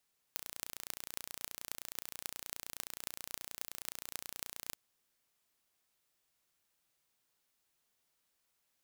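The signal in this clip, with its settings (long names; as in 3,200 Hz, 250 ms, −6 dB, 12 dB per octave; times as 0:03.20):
impulse train 29.5 per second, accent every 8, −10 dBFS 4.39 s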